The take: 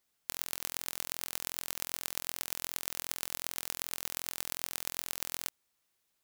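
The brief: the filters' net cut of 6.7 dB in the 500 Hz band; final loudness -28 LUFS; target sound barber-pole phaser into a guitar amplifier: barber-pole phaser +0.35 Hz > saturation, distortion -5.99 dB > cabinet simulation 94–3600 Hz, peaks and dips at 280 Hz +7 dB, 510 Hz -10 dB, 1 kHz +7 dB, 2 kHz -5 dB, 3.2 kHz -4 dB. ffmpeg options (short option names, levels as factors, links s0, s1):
-filter_complex "[0:a]equalizer=f=500:t=o:g=-5.5,asplit=2[s0][s1];[s1]afreqshift=0.35[s2];[s0][s2]amix=inputs=2:normalize=1,asoftclip=threshold=0.0596,highpass=94,equalizer=f=280:t=q:w=4:g=7,equalizer=f=510:t=q:w=4:g=-10,equalizer=f=1000:t=q:w=4:g=7,equalizer=f=2000:t=q:w=4:g=-5,equalizer=f=3200:t=q:w=4:g=-4,lowpass=f=3600:w=0.5412,lowpass=f=3600:w=1.3066,volume=18.8"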